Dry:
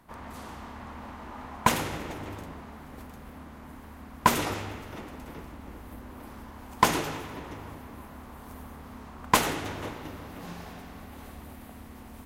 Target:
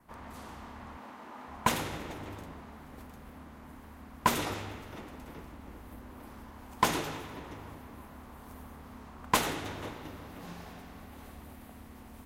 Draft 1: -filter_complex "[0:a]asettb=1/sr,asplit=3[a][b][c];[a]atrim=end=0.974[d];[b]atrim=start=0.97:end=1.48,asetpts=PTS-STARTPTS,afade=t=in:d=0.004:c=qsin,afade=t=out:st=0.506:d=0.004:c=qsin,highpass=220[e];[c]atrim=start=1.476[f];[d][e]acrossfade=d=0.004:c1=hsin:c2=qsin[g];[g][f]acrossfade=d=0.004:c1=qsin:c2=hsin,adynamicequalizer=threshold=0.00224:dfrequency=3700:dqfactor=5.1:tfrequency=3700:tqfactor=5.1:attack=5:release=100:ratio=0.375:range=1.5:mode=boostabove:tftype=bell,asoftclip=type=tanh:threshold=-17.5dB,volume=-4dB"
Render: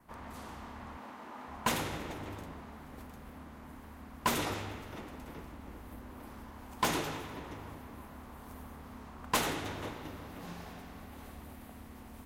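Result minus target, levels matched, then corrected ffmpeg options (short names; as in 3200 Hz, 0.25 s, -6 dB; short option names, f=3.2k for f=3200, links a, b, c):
soft clip: distortion +14 dB
-filter_complex "[0:a]asettb=1/sr,asplit=3[a][b][c];[a]atrim=end=0.974[d];[b]atrim=start=0.97:end=1.48,asetpts=PTS-STARTPTS,afade=t=in:d=0.004:c=qsin,afade=t=out:st=0.506:d=0.004:c=qsin,highpass=220[e];[c]atrim=start=1.476[f];[d][e]acrossfade=d=0.004:c1=hsin:c2=qsin[g];[g][f]acrossfade=d=0.004:c1=qsin:c2=hsin,adynamicequalizer=threshold=0.00224:dfrequency=3700:dqfactor=5.1:tfrequency=3700:tqfactor=5.1:attack=5:release=100:ratio=0.375:range=1.5:mode=boostabove:tftype=bell,asoftclip=type=tanh:threshold=-6dB,volume=-4dB"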